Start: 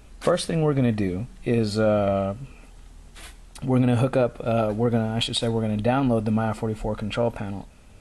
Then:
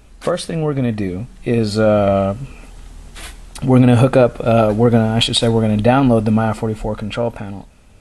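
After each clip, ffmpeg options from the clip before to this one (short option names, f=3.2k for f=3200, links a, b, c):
-af "dynaudnorm=f=310:g=11:m=8dB,volume=2.5dB"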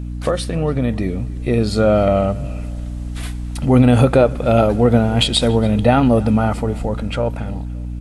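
-filter_complex "[0:a]aeval=exprs='val(0)+0.0631*(sin(2*PI*60*n/s)+sin(2*PI*2*60*n/s)/2+sin(2*PI*3*60*n/s)/3+sin(2*PI*4*60*n/s)/4+sin(2*PI*5*60*n/s)/5)':c=same,asplit=2[a][b];[b]adelay=285,lowpass=f=4.1k:p=1,volume=-21dB,asplit=2[c][d];[d]adelay=285,lowpass=f=4.1k:p=1,volume=0.38,asplit=2[e][f];[f]adelay=285,lowpass=f=4.1k:p=1,volume=0.38[g];[a][c][e][g]amix=inputs=4:normalize=0,volume=-1dB"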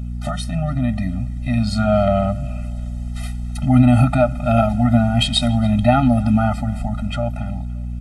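-af "afftfilt=real='re*eq(mod(floor(b*sr/1024/300),2),0)':imag='im*eq(mod(floor(b*sr/1024/300),2),0)':win_size=1024:overlap=0.75"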